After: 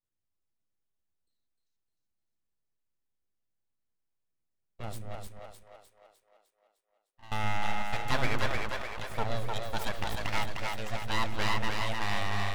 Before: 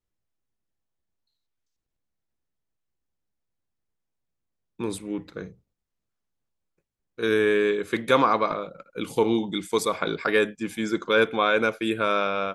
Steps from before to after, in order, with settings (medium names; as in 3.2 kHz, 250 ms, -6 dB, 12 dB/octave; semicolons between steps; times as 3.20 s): 5.15–7.32 s: vowel filter a; full-wave rectifier; two-band feedback delay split 380 Hz, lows 120 ms, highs 304 ms, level -3 dB; trim -7.5 dB